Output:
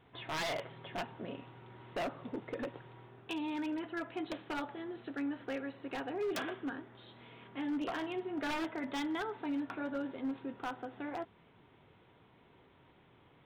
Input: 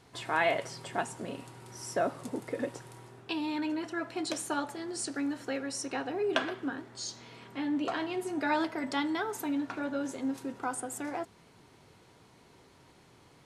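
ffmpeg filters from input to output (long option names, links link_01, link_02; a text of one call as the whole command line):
ffmpeg -i in.wav -af "aresample=8000,aresample=44100,aeval=exprs='0.0473*(abs(mod(val(0)/0.0473+3,4)-2)-1)':channel_layout=same,volume=-4dB" out.wav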